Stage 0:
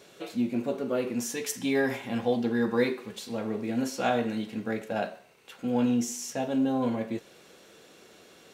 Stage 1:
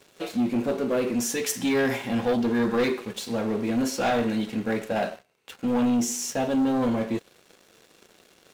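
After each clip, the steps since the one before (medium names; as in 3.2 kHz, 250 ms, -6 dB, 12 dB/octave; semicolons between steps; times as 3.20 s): waveshaping leveller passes 3; trim -5 dB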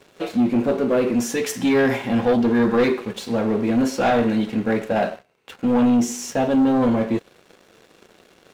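treble shelf 3.6 kHz -9 dB; trim +6 dB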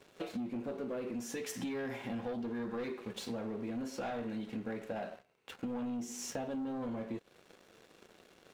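compression 10:1, threshold -28 dBFS, peak gain reduction 13.5 dB; trim -8.5 dB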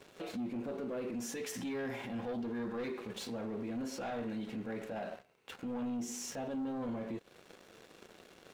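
peak limiter -37 dBFS, peak gain reduction 10.5 dB; trim +3.5 dB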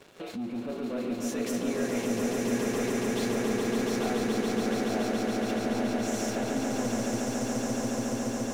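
echo with a slow build-up 141 ms, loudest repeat 8, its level -4.5 dB; trim +3.5 dB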